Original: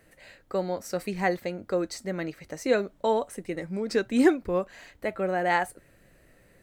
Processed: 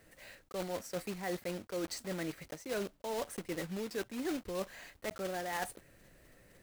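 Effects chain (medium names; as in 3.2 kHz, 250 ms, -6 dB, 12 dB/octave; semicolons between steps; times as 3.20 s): block-companded coder 3-bit; reverse; compression 12:1, threshold -31 dBFS, peak gain reduction 17 dB; reverse; trim -3 dB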